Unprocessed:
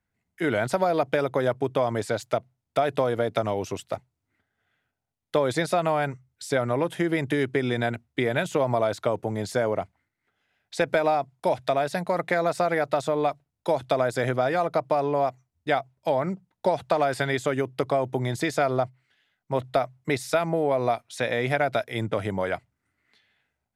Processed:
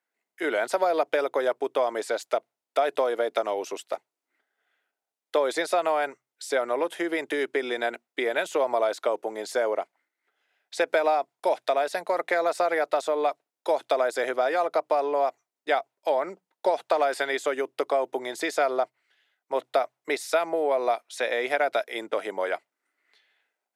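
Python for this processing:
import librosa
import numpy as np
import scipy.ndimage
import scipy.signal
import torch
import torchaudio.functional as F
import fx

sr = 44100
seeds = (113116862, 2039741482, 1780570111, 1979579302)

y = scipy.signal.sosfilt(scipy.signal.butter(4, 350.0, 'highpass', fs=sr, output='sos'), x)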